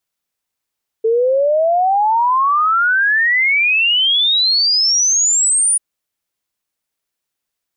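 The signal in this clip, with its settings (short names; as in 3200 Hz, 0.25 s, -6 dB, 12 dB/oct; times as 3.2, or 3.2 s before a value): log sweep 440 Hz -> 9700 Hz 4.74 s -11 dBFS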